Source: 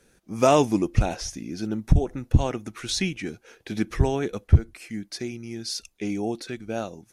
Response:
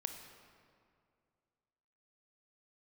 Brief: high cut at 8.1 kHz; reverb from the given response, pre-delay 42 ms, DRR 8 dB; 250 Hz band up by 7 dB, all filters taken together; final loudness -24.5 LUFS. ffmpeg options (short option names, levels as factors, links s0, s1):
-filter_complex "[0:a]lowpass=8100,equalizer=f=250:t=o:g=9,asplit=2[s0][s1];[1:a]atrim=start_sample=2205,adelay=42[s2];[s1][s2]afir=irnorm=-1:irlink=0,volume=0.447[s3];[s0][s3]amix=inputs=2:normalize=0,volume=0.75"